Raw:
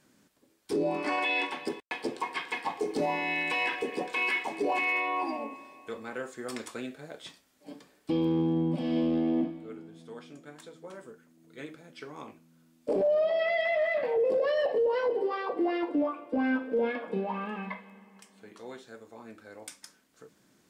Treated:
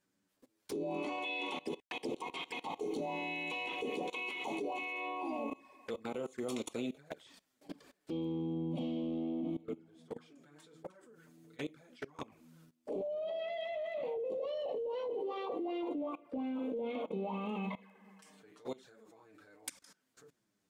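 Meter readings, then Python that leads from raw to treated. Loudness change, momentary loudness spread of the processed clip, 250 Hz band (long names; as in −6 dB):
−10.0 dB, 13 LU, −7.5 dB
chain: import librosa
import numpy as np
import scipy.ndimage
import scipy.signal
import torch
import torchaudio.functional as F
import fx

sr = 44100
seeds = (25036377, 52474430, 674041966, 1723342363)

y = fx.level_steps(x, sr, step_db=21)
y = fx.env_flanger(y, sr, rest_ms=10.9, full_db=-42.0)
y = F.gain(torch.from_numpy(y), 6.0).numpy()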